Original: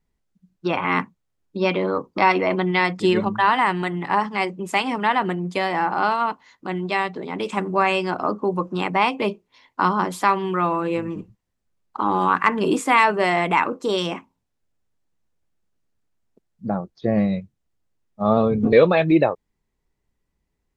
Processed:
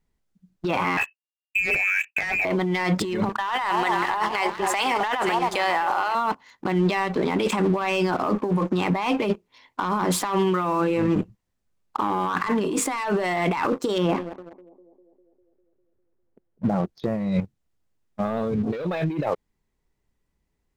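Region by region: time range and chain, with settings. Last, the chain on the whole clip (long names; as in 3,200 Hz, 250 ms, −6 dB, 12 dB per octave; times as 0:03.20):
0:00.97–0:02.45: downward expander −47 dBFS + notch filter 250 Hz, Q 7.8 + voice inversion scrambler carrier 2,800 Hz
0:03.29–0:06.15: high-pass filter 540 Hz + delay that swaps between a low-pass and a high-pass 264 ms, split 980 Hz, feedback 54%, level −9 dB
0:13.98–0:16.73: Bessel low-pass filter 1,300 Hz + feedback echo with a band-pass in the loop 200 ms, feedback 66%, band-pass 420 Hz, level −13.5 dB
whole clip: leveller curve on the samples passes 2; compressor whose output falls as the input rises −21 dBFS, ratio −1; brickwall limiter −12 dBFS; level −1.5 dB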